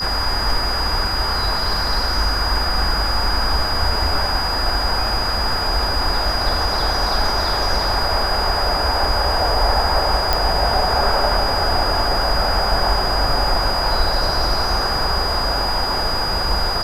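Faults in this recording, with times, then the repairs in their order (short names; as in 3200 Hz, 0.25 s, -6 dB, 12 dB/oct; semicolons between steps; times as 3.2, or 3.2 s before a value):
tone 4900 Hz -22 dBFS
10.33 pop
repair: de-click; notch 4900 Hz, Q 30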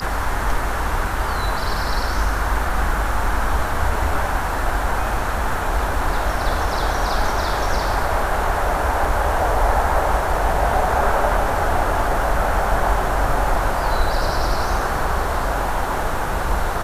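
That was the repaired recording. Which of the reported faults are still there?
none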